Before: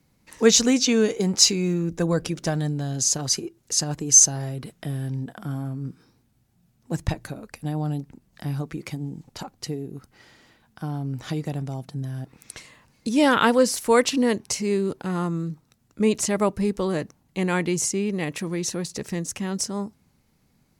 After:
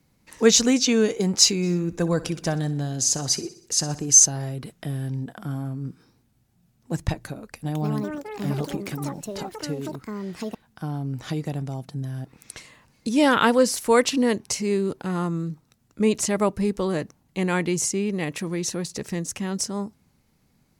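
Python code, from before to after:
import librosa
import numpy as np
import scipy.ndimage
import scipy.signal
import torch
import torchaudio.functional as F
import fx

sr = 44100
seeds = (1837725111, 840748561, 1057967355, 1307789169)

y = fx.echo_feedback(x, sr, ms=62, feedback_pct=52, wet_db=-16, at=(1.62, 4.11), fade=0.02)
y = fx.echo_pitch(y, sr, ms=255, semitones=6, count=3, db_per_echo=-3.0, at=(7.4, 11.49))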